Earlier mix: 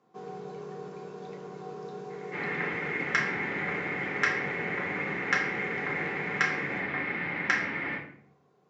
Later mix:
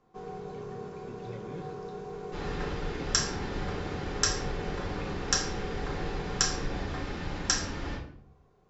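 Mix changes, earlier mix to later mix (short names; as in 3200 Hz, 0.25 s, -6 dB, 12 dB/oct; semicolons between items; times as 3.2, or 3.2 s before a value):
speech: unmuted; second sound: remove synth low-pass 2100 Hz, resonance Q 9.7; master: remove HPF 140 Hz 24 dB/oct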